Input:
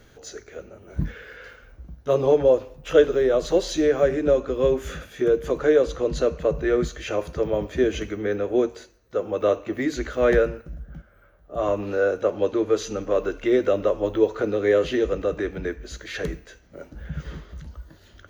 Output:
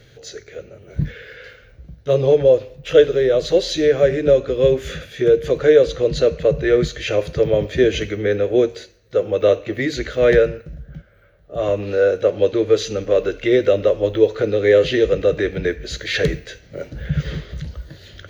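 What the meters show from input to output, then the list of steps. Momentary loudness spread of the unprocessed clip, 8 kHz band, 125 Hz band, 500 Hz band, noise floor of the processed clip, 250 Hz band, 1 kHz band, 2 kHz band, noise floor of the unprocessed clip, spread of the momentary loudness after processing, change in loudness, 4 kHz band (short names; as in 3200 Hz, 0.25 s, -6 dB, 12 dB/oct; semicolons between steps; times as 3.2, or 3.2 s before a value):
19 LU, n/a, +8.0 dB, +5.5 dB, -49 dBFS, +3.0 dB, -0.5 dB, +6.0 dB, -54 dBFS, 17 LU, +5.5 dB, +9.5 dB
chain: ten-band EQ 125 Hz +12 dB, 250 Hz -3 dB, 500 Hz +8 dB, 1000 Hz -7 dB, 2000 Hz +7 dB, 4000 Hz +9 dB; in parallel at +1.5 dB: vocal rider 2 s; on the sum: gain -7 dB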